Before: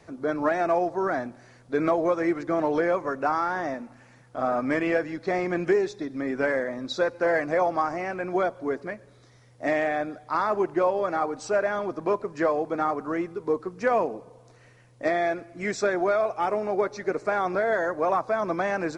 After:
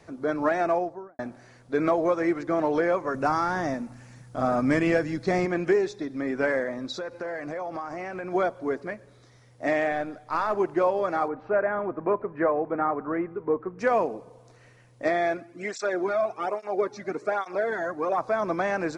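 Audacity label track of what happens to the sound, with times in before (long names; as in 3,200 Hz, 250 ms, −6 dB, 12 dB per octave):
0.620000	1.190000	fade out and dull
3.140000	5.460000	bass and treble bass +10 dB, treble +8 dB
6.890000	8.320000	downward compressor, threshold −30 dBFS
9.920000	10.550000	gain on one half-wave negative side −3 dB
11.280000	13.790000	low-pass filter 2,100 Hz 24 dB per octave
15.370000	18.180000	through-zero flanger with one copy inverted nulls at 1.2 Hz, depth 2.4 ms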